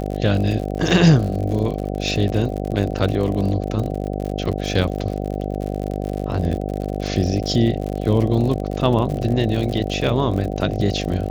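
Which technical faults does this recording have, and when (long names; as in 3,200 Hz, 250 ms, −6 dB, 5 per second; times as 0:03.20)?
mains buzz 50 Hz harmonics 15 −25 dBFS
surface crackle 65 per second −26 dBFS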